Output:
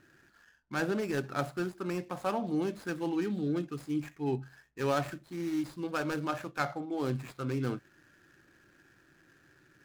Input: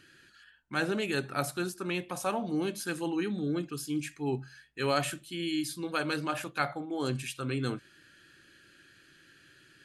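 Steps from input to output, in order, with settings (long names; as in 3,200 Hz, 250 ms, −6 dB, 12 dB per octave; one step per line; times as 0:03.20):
running median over 15 samples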